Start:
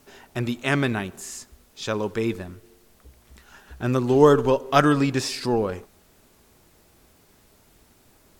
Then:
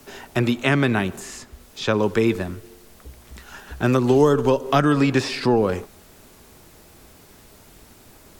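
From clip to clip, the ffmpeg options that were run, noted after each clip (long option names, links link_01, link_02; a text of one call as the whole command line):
ffmpeg -i in.wav -filter_complex "[0:a]acrossover=split=110|320|3700[link_01][link_02][link_03][link_04];[link_01]acompressor=threshold=-43dB:ratio=4[link_05];[link_02]acompressor=threshold=-29dB:ratio=4[link_06];[link_03]acompressor=threshold=-27dB:ratio=4[link_07];[link_04]acompressor=threshold=-49dB:ratio=4[link_08];[link_05][link_06][link_07][link_08]amix=inputs=4:normalize=0,volume=8.5dB" out.wav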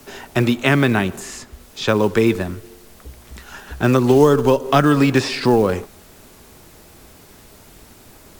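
ffmpeg -i in.wav -af "acrusher=bits=7:mode=log:mix=0:aa=0.000001,volume=3.5dB" out.wav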